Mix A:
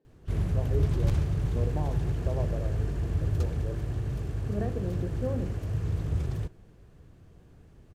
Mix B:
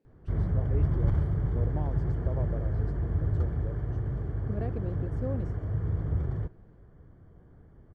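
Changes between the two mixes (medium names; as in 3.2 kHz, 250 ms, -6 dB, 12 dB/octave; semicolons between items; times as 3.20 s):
background: add Savitzky-Golay filter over 41 samples; reverb: off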